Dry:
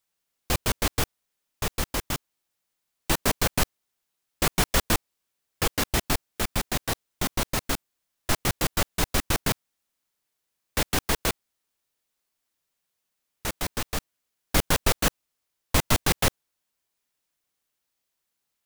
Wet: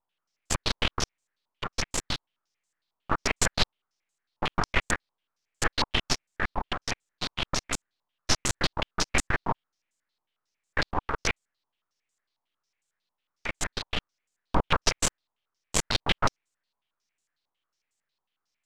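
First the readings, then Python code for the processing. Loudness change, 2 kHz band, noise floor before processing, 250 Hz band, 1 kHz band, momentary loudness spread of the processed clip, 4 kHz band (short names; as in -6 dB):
-2.5 dB, 0.0 dB, -81 dBFS, -5.0 dB, -0.5 dB, 9 LU, 0.0 dB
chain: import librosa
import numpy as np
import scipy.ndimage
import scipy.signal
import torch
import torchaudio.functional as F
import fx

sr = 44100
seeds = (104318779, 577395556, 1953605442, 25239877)

y = np.maximum(x, 0.0)
y = fx.filter_held_lowpass(y, sr, hz=11.0, low_hz=960.0, high_hz=7500.0)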